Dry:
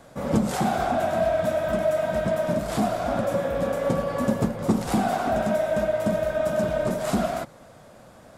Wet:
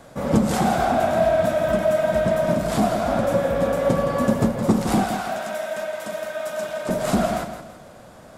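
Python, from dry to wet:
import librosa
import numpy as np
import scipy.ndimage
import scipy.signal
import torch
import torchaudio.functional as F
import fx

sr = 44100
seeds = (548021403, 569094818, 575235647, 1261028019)

p1 = fx.highpass(x, sr, hz=1500.0, slope=6, at=(5.04, 6.89))
p2 = p1 + fx.echo_feedback(p1, sr, ms=166, feedback_pct=36, wet_db=-9.5, dry=0)
y = p2 * librosa.db_to_amplitude(3.5)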